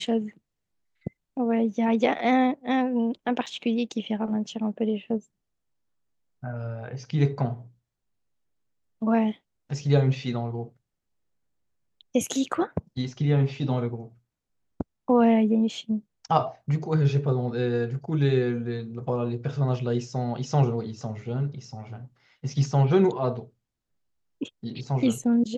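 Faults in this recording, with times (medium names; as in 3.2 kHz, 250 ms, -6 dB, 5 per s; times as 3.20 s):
3.46 s: dropout 4.9 ms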